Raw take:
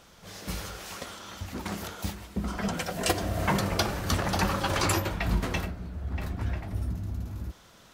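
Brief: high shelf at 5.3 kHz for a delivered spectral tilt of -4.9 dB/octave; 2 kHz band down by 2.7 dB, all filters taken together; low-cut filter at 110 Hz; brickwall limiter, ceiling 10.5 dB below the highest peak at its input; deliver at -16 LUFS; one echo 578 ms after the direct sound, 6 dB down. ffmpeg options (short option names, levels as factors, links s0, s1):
-af "highpass=110,equalizer=f=2000:t=o:g=-3,highshelf=f=5300:g=-3.5,alimiter=limit=0.0708:level=0:latency=1,aecho=1:1:578:0.501,volume=8.41"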